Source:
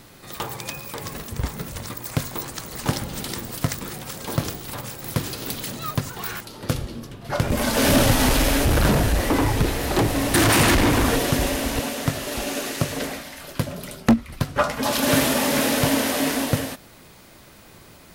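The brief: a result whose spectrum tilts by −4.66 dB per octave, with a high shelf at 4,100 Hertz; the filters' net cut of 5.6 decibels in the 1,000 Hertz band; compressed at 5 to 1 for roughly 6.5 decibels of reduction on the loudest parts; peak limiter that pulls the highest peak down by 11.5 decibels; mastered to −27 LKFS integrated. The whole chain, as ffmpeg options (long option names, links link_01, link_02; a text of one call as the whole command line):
ffmpeg -i in.wav -af "equalizer=frequency=1000:width_type=o:gain=-7,highshelf=frequency=4100:gain=-7,acompressor=threshold=-21dB:ratio=5,volume=6dB,alimiter=limit=-17.5dB:level=0:latency=1" out.wav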